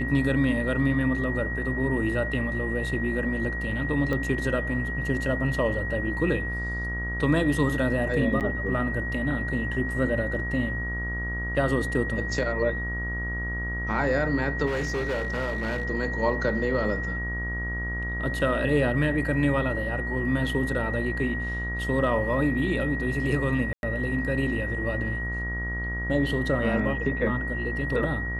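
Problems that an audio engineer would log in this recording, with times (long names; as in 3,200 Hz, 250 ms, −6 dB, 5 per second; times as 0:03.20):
mains buzz 60 Hz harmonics 31 −32 dBFS
whistle 1,900 Hz −31 dBFS
0:04.13: click −17 dBFS
0:08.40–0:08.41: drop-out 8 ms
0:14.66–0:15.85: clipping −24 dBFS
0:23.73–0:23.83: drop-out 101 ms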